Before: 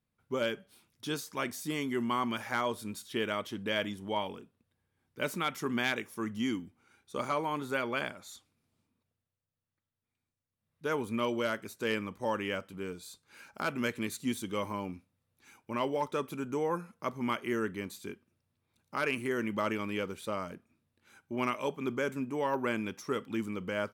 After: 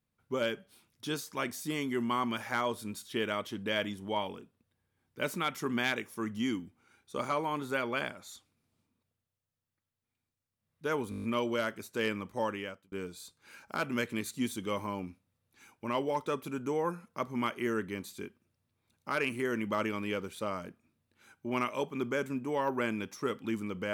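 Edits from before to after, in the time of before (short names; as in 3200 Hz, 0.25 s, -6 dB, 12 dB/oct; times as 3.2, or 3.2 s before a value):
11.1 stutter 0.02 s, 8 plays
12.28–12.78 fade out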